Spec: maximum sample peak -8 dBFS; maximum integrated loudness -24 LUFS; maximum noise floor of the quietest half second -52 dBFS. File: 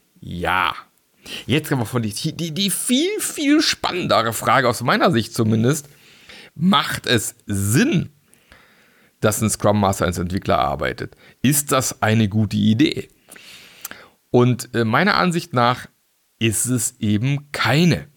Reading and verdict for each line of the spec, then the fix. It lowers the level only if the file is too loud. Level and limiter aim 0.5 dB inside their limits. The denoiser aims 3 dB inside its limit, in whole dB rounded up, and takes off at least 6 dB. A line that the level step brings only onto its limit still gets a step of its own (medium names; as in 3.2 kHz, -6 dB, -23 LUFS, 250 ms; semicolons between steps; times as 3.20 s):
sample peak -4.0 dBFS: fail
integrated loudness -19.0 LUFS: fail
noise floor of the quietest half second -64 dBFS: pass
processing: trim -5.5 dB